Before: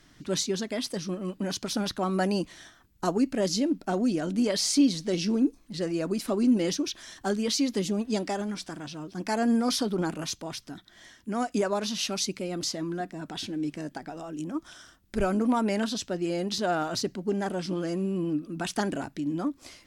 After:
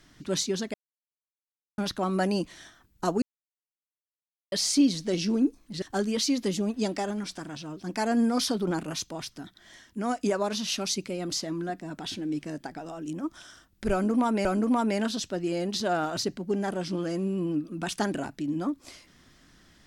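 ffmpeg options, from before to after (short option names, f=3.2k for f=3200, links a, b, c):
-filter_complex "[0:a]asplit=7[a][b][c][d][e][f][g];[a]atrim=end=0.74,asetpts=PTS-STARTPTS,afade=t=out:st=0.736:d=0.004:c=hsin[h];[b]atrim=start=0.74:end=1.78,asetpts=PTS-STARTPTS,volume=0[i];[c]atrim=start=1.78:end=3.22,asetpts=PTS-STARTPTS,afade=t=in:d=0.004:c=hsin,afade=t=out:st=1.436:d=0.004:c=hsin[j];[d]atrim=start=3.22:end=4.52,asetpts=PTS-STARTPTS,volume=0[k];[e]atrim=start=4.52:end=5.822,asetpts=PTS-STARTPTS,afade=t=in:d=0.004:c=hsin[l];[f]atrim=start=7.128:end=15.762[m];[g]atrim=start=15.228[n];[h][i][j][k][l]concat=n=5:v=0:a=1[o];[o][m]acrossfade=d=0.004:c1=hsin:c2=hsin[p];[p][n]acrossfade=d=0.004:c1=hsin:c2=hsin"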